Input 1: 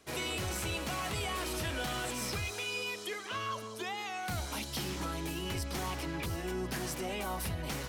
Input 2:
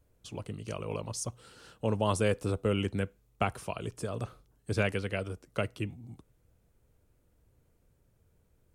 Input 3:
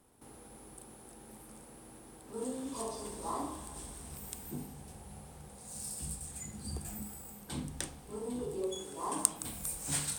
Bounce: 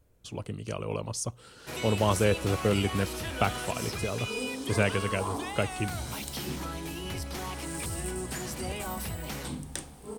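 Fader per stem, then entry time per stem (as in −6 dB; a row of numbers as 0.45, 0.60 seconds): 0.0, +3.0, +2.0 decibels; 1.60, 0.00, 1.95 seconds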